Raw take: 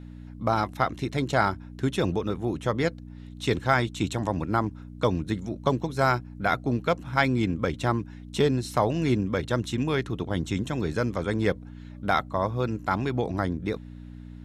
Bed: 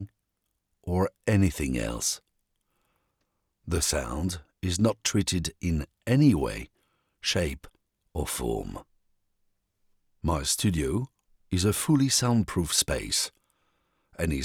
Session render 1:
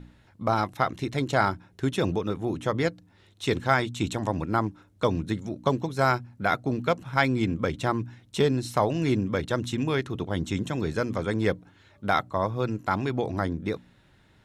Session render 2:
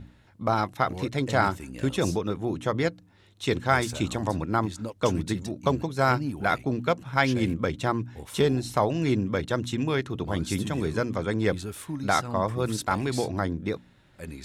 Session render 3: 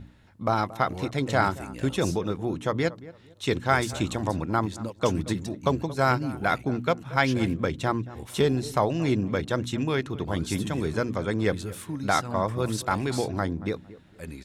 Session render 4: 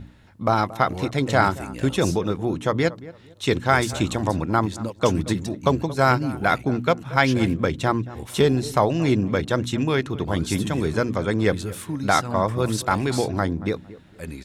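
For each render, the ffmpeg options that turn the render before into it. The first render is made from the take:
-af "bandreject=f=60:t=h:w=4,bandreject=f=120:t=h:w=4,bandreject=f=180:t=h:w=4,bandreject=f=240:t=h:w=4,bandreject=f=300:t=h:w=4"
-filter_complex "[1:a]volume=0.266[s0];[0:a][s0]amix=inputs=2:normalize=0"
-filter_complex "[0:a]asplit=2[s0][s1];[s1]adelay=228,lowpass=f=1200:p=1,volume=0.141,asplit=2[s2][s3];[s3]adelay=228,lowpass=f=1200:p=1,volume=0.29,asplit=2[s4][s5];[s5]adelay=228,lowpass=f=1200:p=1,volume=0.29[s6];[s0][s2][s4][s6]amix=inputs=4:normalize=0"
-af "volume=1.68,alimiter=limit=0.708:level=0:latency=1"

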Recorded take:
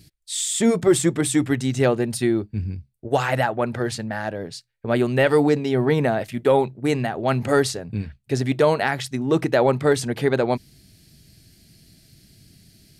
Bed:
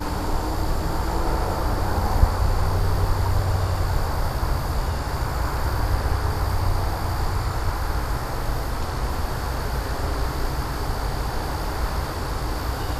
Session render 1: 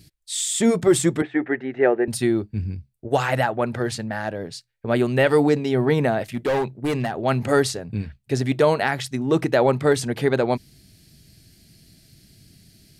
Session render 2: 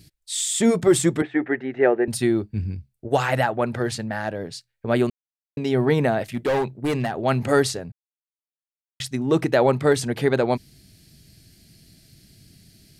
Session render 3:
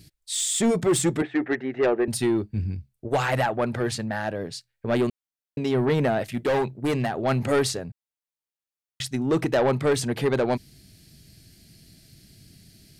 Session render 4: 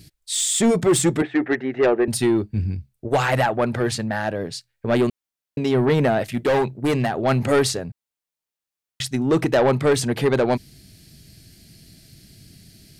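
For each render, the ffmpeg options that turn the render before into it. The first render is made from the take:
-filter_complex "[0:a]asettb=1/sr,asplit=3[s0][s1][s2];[s0]atrim=end=1.224[s3];[s1]atrim=start=1.22:end=2.08,asetpts=PTS-STARTPTS,afade=t=in:d=0.004:c=qsin,afade=t=out:st=0.856:d=0.004:c=qsin,highpass=360,equalizer=f=380:t=q:w=4:g=7,equalizer=f=750:t=q:w=4:g=4,equalizer=f=1100:t=q:w=4:g=-7,equalizer=f=1800:t=q:w=4:g=7,lowpass=f=2100:w=0.5412,lowpass=f=2100:w=1.3066[s4];[s2]atrim=start=2.076[s5];[s3][s4]acrossfade=d=0.004:c1=hsin:c2=qsin[s6];[s6][s5]acrossfade=d=0.004:c1=qsin:c2=hsin,asettb=1/sr,asplit=3[s7][s8][s9];[s7]atrim=end=6.314[s10];[s8]atrim=start=6.31:end=7.12,asetpts=PTS-STARTPTS,afade=t=in:d=0.004:c=qsin,afade=t=out:st=0.806:d=0.004:c=qsin,asoftclip=type=hard:threshold=0.119[s11];[s9]atrim=start=7.116[s12];[s10][s11]acrossfade=d=0.004:c1=hsin:c2=qsin[s13];[s13][s12]acrossfade=d=0.004:c1=qsin:c2=hsin"
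-filter_complex "[0:a]asplit=5[s0][s1][s2][s3][s4];[s0]atrim=end=5.1,asetpts=PTS-STARTPTS,afade=t=out:st=5.096:d=0.004:c=hsin[s5];[s1]atrim=start=5.1:end=5.57,asetpts=PTS-STARTPTS,volume=0[s6];[s2]atrim=start=5.57:end=7.92,asetpts=PTS-STARTPTS,afade=t=in:d=0.004:c=hsin,afade=t=out:st=2.346:d=0.004:c=hsin[s7];[s3]atrim=start=7.92:end=9,asetpts=PTS-STARTPTS,volume=0[s8];[s4]atrim=start=9,asetpts=PTS-STARTPTS,afade=t=in:d=0.004:c=hsin[s9];[s5][s6][s7][s8][s9]concat=n=5:v=0:a=1"
-af "asoftclip=type=tanh:threshold=0.168"
-af "volume=1.58"

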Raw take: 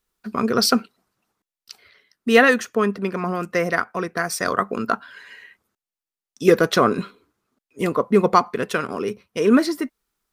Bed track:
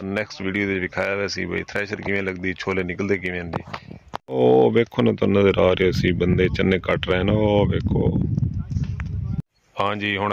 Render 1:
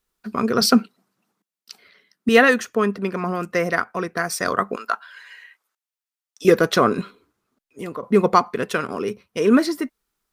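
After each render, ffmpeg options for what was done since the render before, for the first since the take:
-filter_complex "[0:a]asettb=1/sr,asplit=3[s0][s1][s2];[s0]atrim=end=0.614[s3];[s1]atrim=start=0.61:end=2.29,asetpts=PTS-STARTPTS,afade=t=in:d=0.004:c=qsin,afade=t=out:st=1.676:d=0.004:c=qsin,highpass=f=180:t=q:w=2.1[s4];[s2]atrim=start=2.286[s5];[s3][s4]acrossfade=d=0.004:c1=hsin:c2=qsin[s6];[s6][s5]acrossfade=d=0.004:c1=qsin:c2=hsin,asettb=1/sr,asplit=3[s7][s8][s9];[s7]atrim=end=4.764[s10];[s8]atrim=start=4.76:end=6.45,asetpts=PTS-STARTPTS,afade=t=in:d=0.004:c=qsin,afade=t=out:st=1.686:d=0.004:c=qsin,highpass=830[s11];[s9]atrim=start=6.446[s12];[s10][s11]acrossfade=d=0.004:c1=hsin:c2=qsin[s13];[s13][s12]acrossfade=d=0.004:c1=qsin:c2=hsin,asettb=1/sr,asplit=3[s14][s15][s16];[s14]atrim=end=7.014[s17];[s15]atrim=start=7.01:end=8.03,asetpts=PTS-STARTPTS,afade=t=in:d=0.004:c=qsin,afade=t=out:st=1.016:d=0.004:c=qsin,acompressor=threshold=0.02:ratio=2:attack=3.2:release=140:knee=1:detection=peak[s18];[s16]atrim=start=8.026[s19];[s17][s18]acrossfade=d=0.004:c1=hsin:c2=qsin[s20];[s20][s19]acrossfade=d=0.004:c1=qsin:c2=hsin"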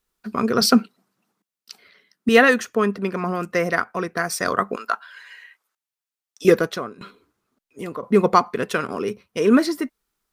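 -filter_complex "[0:a]asplit=2[s0][s1];[s0]atrim=end=7.01,asetpts=PTS-STARTPTS,afade=t=out:st=6.52:d=0.49:c=qua:silence=0.0841395[s2];[s1]atrim=start=7.01,asetpts=PTS-STARTPTS,afade=t=in:d=0.004:c=hsin:silence=0.0841395[s3];[s2][s3]concat=n=2:v=0:a=1"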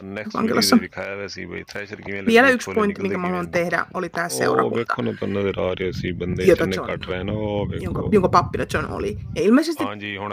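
-filter_complex "[1:a]volume=0.501[s0];[0:a][s0]amix=inputs=2:normalize=0"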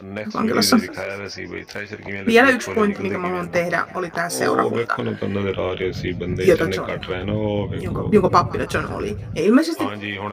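-filter_complex "[0:a]asplit=2[s0][s1];[s1]adelay=19,volume=0.473[s2];[s0][s2]amix=inputs=2:normalize=0,asplit=5[s3][s4][s5][s6][s7];[s4]adelay=159,afreqshift=77,volume=0.075[s8];[s5]adelay=318,afreqshift=154,volume=0.0452[s9];[s6]adelay=477,afreqshift=231,volume=0.0269[s10];[s7]adelay=636,afreqshift=308,volume=0.0162[s11];[s3][s8][s9][s10][s11]amix=inputs=5:normalize=0"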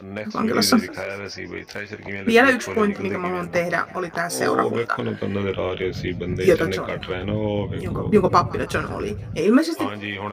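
-af "volume=0.841"

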